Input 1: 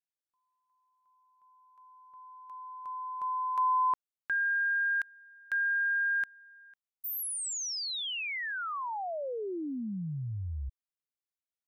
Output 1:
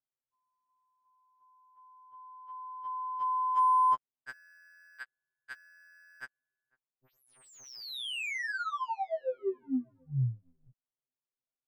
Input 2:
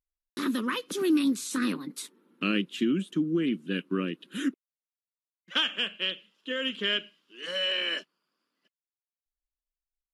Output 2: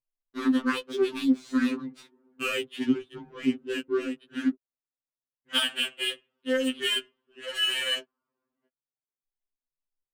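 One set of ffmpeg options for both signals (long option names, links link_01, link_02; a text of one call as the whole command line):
ffmpeg -i in.wav -af "adynamicsmooth=sensitivity=7:basefreq=1200,afftfilt=real='re*2.45*eq(mod(b,6),0)':imag='im*2.45*eq(mod(b,6),0)':win_size=2048:overlap=0.75,volume=3.5dB" out.wav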